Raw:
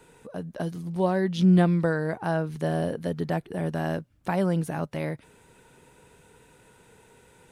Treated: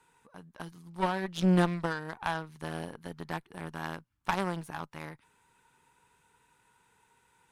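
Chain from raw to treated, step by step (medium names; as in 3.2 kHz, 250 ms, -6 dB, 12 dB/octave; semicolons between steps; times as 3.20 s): resonant low shelf 760 Hz -6 dB, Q 3; Chebyshev shaper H 2 -7 dB, 7 -20 dB, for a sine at -14 dBFS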